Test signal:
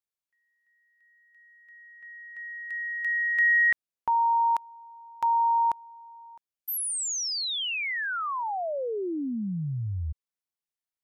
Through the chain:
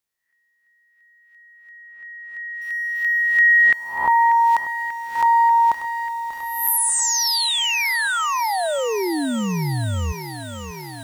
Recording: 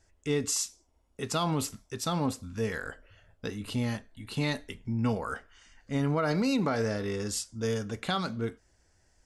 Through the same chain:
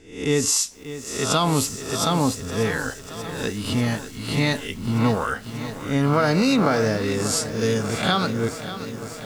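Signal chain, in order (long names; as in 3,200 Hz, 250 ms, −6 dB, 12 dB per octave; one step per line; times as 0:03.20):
peak hold with a rise ahead of every peak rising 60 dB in 0.52 s
feedback echo at a low word length 589 ms, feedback 80%, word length 8 bits, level −12.5 dB
level +7.5 dB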